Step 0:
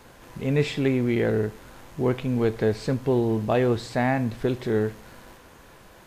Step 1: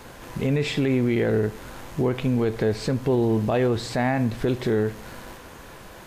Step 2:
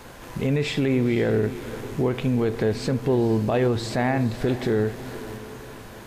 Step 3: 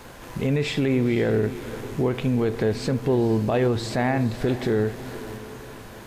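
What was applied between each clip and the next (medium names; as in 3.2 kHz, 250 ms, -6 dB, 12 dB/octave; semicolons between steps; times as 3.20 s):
in parallel at +1.5 dB: compression, threshold -29 dBFS, peak gain reduction 12.5 dB; on the sum: peak limiter -13.5 dBFS, peak gain reduction 6 dB
echo that smears into a reverb 490 ms, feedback 47%, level -14 dB
crackle 11 per s -42 dBFS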